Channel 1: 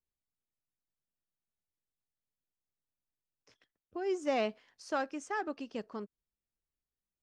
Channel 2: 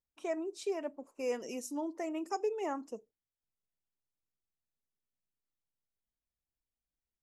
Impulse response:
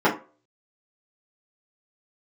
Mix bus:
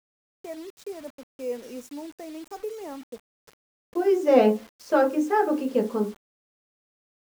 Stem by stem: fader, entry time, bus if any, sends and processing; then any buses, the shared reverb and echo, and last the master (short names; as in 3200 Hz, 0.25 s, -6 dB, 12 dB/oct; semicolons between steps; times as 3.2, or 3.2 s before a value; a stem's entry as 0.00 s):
+2.5 dB, 0.00 s, send -17 dB, low shelf 61 Hz -9.5 dB
-5.5 dB, 0.20 s, no send, dry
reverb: on, RT60 0.35 s, pre-delay 3 ms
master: small resonant body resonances 240/480 Hz, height 9 dB, ringing for 25 ms; requantised 8-bit, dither none